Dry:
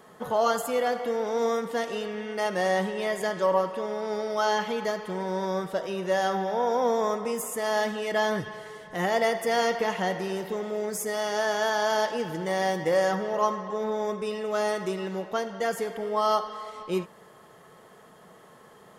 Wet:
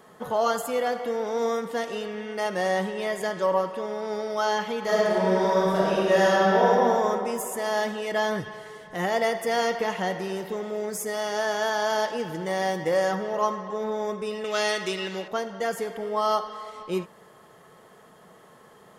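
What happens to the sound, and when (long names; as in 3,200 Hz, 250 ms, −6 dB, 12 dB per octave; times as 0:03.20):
0:04.80–0:06.65: thrown reverb, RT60 2.7 s, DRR −7.5 dB
0:14.44–0:15.28: meter weighting curve D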